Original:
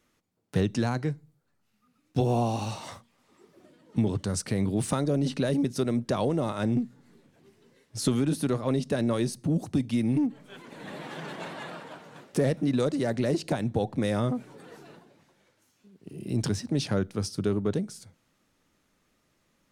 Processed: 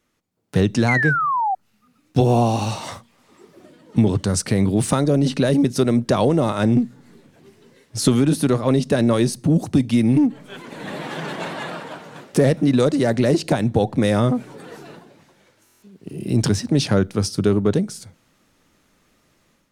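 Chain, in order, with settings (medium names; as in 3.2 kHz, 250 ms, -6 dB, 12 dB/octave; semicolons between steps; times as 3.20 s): level rider gain up to 9.5 dB; painted sound fall, 0.88–1.55 s, 740–2200 Hz -20 dBFS; buffer glitch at 15.64 s, samples 1024, times 7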